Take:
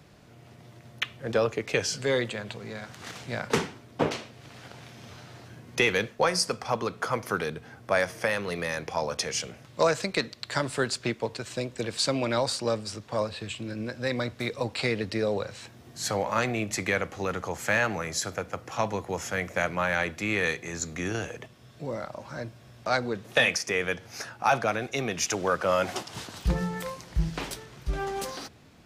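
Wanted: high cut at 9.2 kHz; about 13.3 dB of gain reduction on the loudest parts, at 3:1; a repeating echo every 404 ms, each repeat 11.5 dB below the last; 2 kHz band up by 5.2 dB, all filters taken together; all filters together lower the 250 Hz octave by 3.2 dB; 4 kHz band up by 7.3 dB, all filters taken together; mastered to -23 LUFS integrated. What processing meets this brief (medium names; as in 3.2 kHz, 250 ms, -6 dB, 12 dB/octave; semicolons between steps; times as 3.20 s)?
low-pass 9.2 kHz; peaking EQ 250 Hz -4.5 dB; peaking EQ 2 kHz +4.5 dB; peaking EQ 4 kHz +8 dB; compression 3:1, threshold -32 dBFS; feedback delay 404 ms, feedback 27%, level -11.5 dB; trim +11 dB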